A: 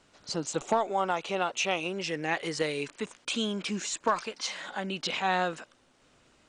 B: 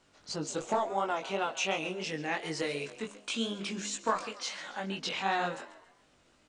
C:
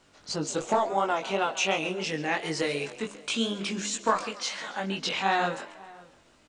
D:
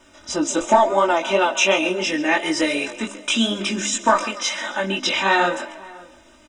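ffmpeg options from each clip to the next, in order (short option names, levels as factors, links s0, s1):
-filter_complex "[0:a]bandreject=f=67.97:t=h:w=4,bandreject=f=135.94:t=h:w=4,bandreject=f=203.91:t=h:w=4,bandreject=f=271.88:t=h:w=4,bandreject=f=339.85:t=h:w=4,bandreject=f=407.82:t=h:w=4,bandreject=f=475.79:t=h:w=4,bandreject=f=543.76:t=h:w=4,bandreject=f=611.73:t=h:w=4,bandreject=f=679.7:t=h:w=4,asplit=5[s0][s1][s2][s3][s4];[s1]adelay=137,afreqshift=68,volume=0.15[s5];[s2]adelay=274,afreqshift=136,volume=0.0661[s6];[s3]adelay=411,afreqshift=204,volume=0.0288[s7];[s4]adelay=548,afreqshift=272,volume=0.0127[s8];[s0][s5][s6][s7][s8]amix=inputs=5:normalize=0,flanger=delay=19:depth=3.4:speed=2.8"
-filter_complex "[0:a]asplit=2[s0][s1];[s1]adelay=548.1,volume=0.0794,highshelf=f=4000:g=-12.3[s2];[s0][s2]amix=inputs=2:normalize=0,volume=1.78"
-af "asuperstop=centerf=4400:order=20:qfactor=6.5,aecho=1:1:3.3:0.83,volume=2.24"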